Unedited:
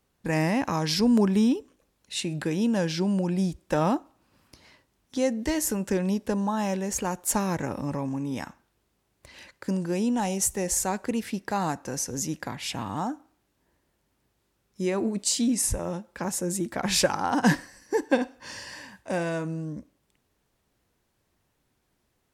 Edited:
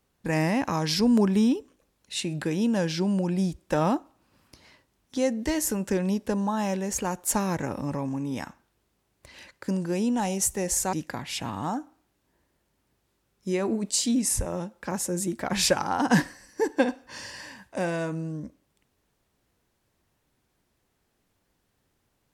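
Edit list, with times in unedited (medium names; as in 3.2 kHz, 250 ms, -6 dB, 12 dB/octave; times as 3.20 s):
10.93–12.26 s: delete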